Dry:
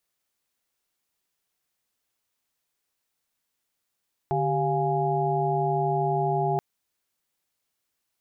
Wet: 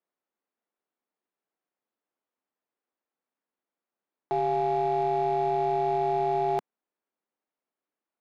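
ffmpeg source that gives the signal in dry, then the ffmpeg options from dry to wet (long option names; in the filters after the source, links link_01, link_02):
-f lavfi -i "aevalsrc='0.0422*(sin(2*PI*146.83*t)+sin(2*PI*392*t)+sin(2*PI*698.46*t)+sin(2*PI*830.61*t))':duration=2.28:sample_rate=44100"
-af "highpass=frequency=210:width=0.5412,highpass=frequency=210:width=1.3066,adynamicsmooth=sensitivity=6.5:basefreq=1400,aeval=exprs='0.133*(cos(1*acos(clip(val(0)/0.133,-1,1)))-cos(1*PI/2))+0.00531*(cos(4*acos(clip(val(0)/0.133,-1,1)))-cos(4*PI/2))+0.00596*(cos(6*acos(clip(val(0)/0.133,-1,1)))-cos(6*PI/2))':channel_layout=same"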